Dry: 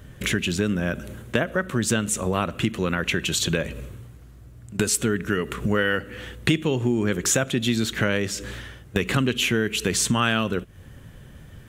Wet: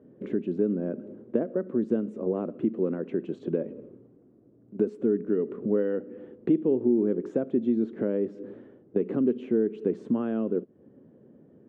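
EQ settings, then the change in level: Butterworth band-pass 320 Hz, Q 1.2; tilt +2 dB/oct; +4.5 dB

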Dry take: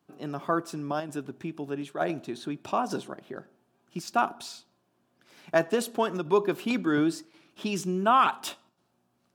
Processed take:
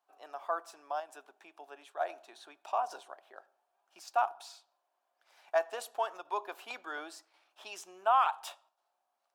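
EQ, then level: ladder high-pass 630 Hz, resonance 50%; 0.0 dB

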